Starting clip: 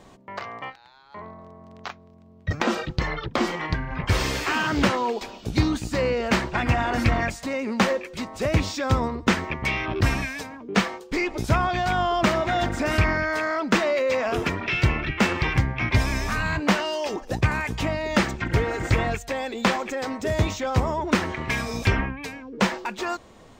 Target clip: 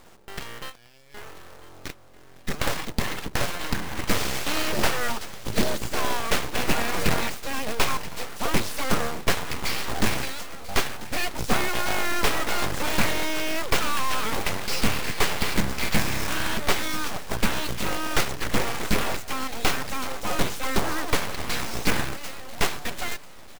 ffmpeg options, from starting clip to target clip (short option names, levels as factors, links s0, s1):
-af "aeval=exprs='abs(val(0))':c=same,aecho=1:1:992|1984|2976|3968:0.126|0.0604|0.029|0.0139,acrusher=bits=2:mode=log:mix=0:aa=0.000001"